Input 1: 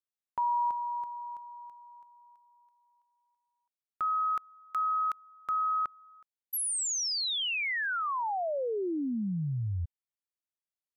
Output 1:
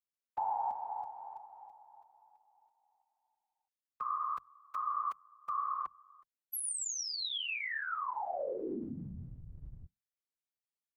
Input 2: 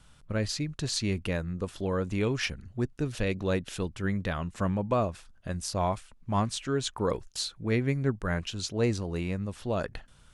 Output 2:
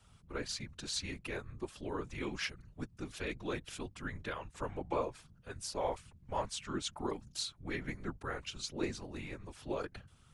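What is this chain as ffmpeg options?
-filter_complex "[0:a]acrossover=split=390|1500[s0][s1][s2];[s0]acompressor=threshold=0.00355:ratio=2:release=94:knee=2.83:detection=peak[s3];[s3][s1][s2]amix=inputs=3:normalize=0,afreqshift=-110,afftfilt=real='hypot(re,im)*cos(2*PI*random(0))':imag='hypot(re,im)*sin(2*PI*random(1))':win_size=512:overlap=0.75"

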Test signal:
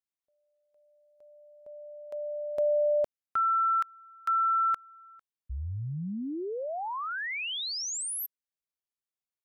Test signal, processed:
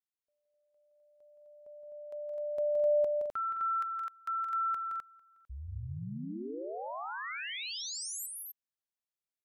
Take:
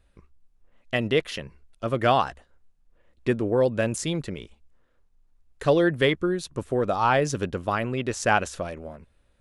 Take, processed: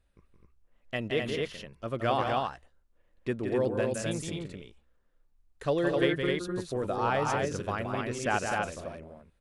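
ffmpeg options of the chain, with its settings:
-af "aecho=1:1:169.1|212.8|256.6:0.501|0.251|0.708,volume=0.398"

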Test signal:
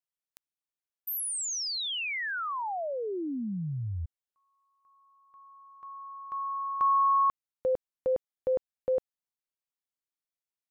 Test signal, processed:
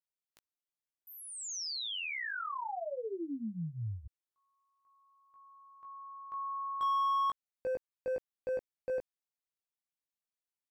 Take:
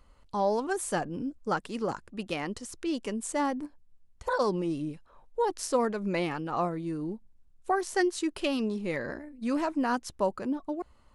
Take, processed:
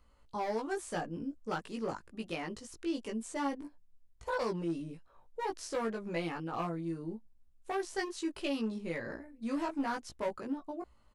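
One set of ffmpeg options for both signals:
-filter_complex "[0:a]acrossover=split=7500[s0][s1];[s1]acompressor=threshold=0.00398:ratio=4:attack=1:release=60[s2];[s0][s2]amix=inputs=2:normalize=0,acrossover=split=2100[s3][s4];[s3]volume=16.8,asoftclip=hard,volume=0.0596[s5];[s5][s4]amix=inputs=2:normalize=0,asplit=2[s6][s7];[s7]adelay=18,volume=0.794[s8];[s6][s8]amix=inputs=2:normalize=0,volume=0.422"

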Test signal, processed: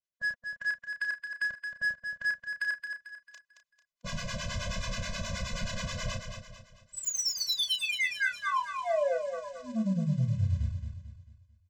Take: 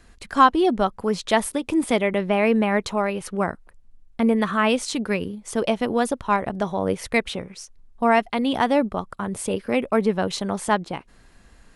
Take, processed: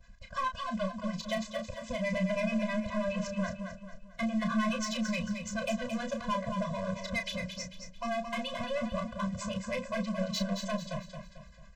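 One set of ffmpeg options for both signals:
-filter_complex "[0:a]dynaudnorm=f=610:g=5:m=1.68,acrossover=split=690[s0][s1];[s0]aeval=exprs='val(0)*(1-1/2+1/2*cos(2*PI*9.4*n/s))':c=same[s2];[s1]aeval=exprs='val(0)*(1-1/2-1/2*cos(2*PI*9.4*n/s))':c=same[s3];[s2][s3]amix=inputs=2:normalize=0,acompressor=threshold=0.0794:ratio=8,aresample=16000,acrusher=bits=5:mode=log:mix=0:aa=0.000001,aresample=44100,asoftclip=type=tanh:threshold=0.0596,asplit=2[s4][s5];[s5]adelay=32,volume=0.447[s6];[s4][s6]amix=inputs=2:normalize=0,aecho=1:1:222|444|666|888|1110:0.447|0.179|0.0715|0.0286|0.0114,afftfilt=real='re*eq(mod(floor(b*sr/1024/240),2),0)':imag='im*eq(mod(floor(b*sr/1024/240),2),0)':win_size=1024:overlap=0.75"

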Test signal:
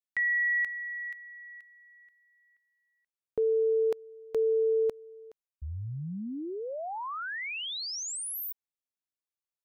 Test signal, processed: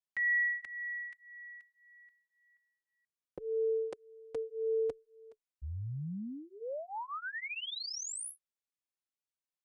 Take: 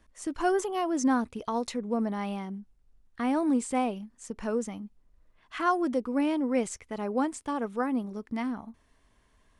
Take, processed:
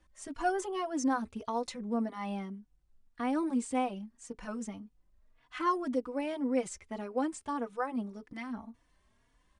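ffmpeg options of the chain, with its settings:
-filter_complex "[0:a]aresample=22050,aresample=44100,bandreject=f=430:w=14,asplit=2[s0][s1];[s1]adelay=3.5,afreqshift=1.8[s2];[s0][s2]amix=inputs=2:normalize=1,volume=0.841"

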